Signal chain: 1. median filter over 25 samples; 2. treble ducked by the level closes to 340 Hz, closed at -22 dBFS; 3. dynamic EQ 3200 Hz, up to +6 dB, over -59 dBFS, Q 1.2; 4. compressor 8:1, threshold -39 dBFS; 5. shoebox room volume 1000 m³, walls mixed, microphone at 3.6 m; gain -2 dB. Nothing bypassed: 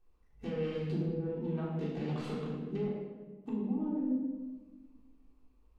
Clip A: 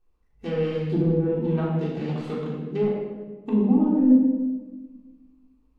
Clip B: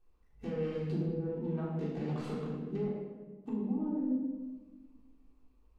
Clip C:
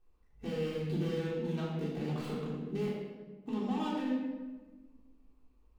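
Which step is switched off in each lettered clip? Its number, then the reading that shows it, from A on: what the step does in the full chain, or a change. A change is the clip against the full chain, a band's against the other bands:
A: 4, mean gain reduction 9.5 dB; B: 3, 2 kHz band -2.5 dB; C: 2, 250 Hz band -5.5 dB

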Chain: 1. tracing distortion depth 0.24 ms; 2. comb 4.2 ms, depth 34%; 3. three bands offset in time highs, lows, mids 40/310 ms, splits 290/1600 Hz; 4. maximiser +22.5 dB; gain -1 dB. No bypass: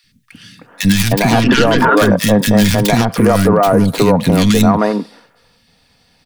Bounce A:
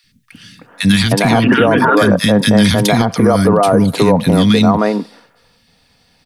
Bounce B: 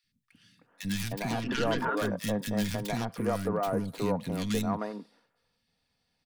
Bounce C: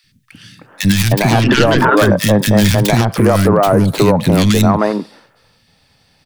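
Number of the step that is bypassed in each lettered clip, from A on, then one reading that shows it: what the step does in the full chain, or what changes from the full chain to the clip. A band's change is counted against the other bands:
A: 1, 8 kHz band -3.0 dB; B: 4, crest factor change +6.0 dB; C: 2, 125 Hz band +2.5 dB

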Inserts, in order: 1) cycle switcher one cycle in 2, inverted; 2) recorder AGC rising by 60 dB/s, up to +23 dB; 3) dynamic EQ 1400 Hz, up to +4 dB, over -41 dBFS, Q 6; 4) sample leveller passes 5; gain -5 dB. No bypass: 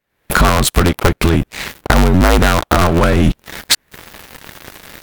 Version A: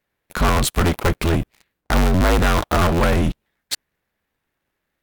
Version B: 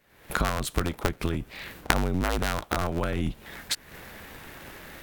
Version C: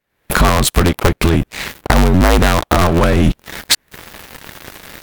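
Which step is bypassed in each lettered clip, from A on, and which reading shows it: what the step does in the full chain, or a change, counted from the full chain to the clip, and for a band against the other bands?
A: 2, crest factor change -4.0 dB; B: 4, crest factor change +15.5 dB; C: 3, momentary loudness spread change +15 LU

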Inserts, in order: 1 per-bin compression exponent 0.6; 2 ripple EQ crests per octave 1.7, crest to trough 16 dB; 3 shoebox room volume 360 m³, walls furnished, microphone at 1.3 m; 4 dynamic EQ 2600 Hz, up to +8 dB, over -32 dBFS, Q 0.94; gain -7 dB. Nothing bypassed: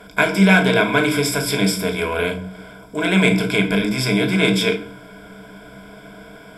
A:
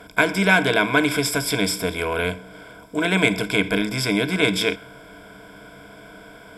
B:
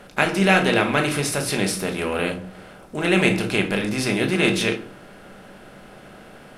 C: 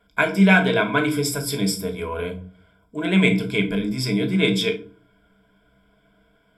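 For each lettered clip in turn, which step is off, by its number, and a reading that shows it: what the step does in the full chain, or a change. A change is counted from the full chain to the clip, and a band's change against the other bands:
3, momentary loudness spread change -3 LU; 2, 8 kHz band +2.5 dB; 1, momentary loudness spread change +2 LU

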